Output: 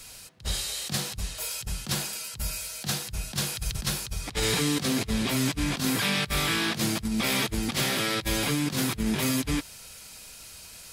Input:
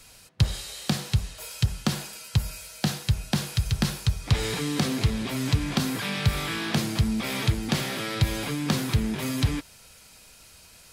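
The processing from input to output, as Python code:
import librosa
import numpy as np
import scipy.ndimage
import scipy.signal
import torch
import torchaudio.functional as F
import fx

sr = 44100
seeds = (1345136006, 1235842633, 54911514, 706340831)

y = fx.high_shelf(x, sr, hz=3000.0, db=5.0)
y = fx.over_compress(y, sr, threshold_db=-27.0, ratio=-0.5)
y = fx.attack_slew(y, sr, db_per_s=420.0)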